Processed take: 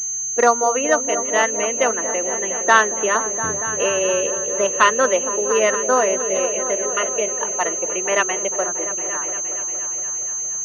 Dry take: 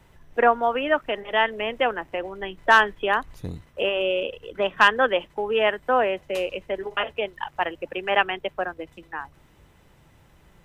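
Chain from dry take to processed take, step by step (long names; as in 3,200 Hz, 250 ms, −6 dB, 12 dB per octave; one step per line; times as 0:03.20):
low-shelf EQ 120 Hz −9 dB
on a send: echo whose low-pass opens from repeat to repeat 232 ms, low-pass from 400 Hz, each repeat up 1 octave, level −6 dB
on the sum: pitch vibrato 0.48 Hz 9.3 cents
notch comb filter 820 Hz
switching amplifier with a slow clock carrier 6,300 Hz
level +4.5 dB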